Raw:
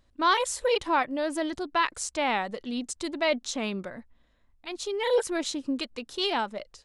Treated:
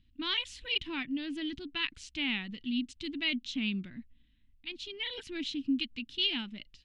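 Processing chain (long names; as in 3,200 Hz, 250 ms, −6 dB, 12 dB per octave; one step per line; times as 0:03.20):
drawn EQ curve 280 Hz 0 dB, 530 Hz −29 dB, 1,200 Hz −20 dB, 2,900 Hz +4 dB, 8,100 Hz −22 dB, 12,000 Hz −27 dB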